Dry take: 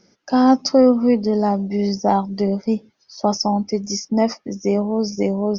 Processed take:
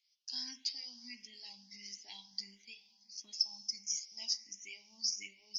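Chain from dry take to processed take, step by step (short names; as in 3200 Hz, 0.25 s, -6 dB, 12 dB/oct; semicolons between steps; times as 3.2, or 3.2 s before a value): gate -39 dBFS, range -8 dB; inverse Chebyshev high-pass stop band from 1400 Hz, stop band 40 dB; on a send at -9 dB: reverb, pre-delay 3 ms; on the sum: endless phaser +1.5 Hz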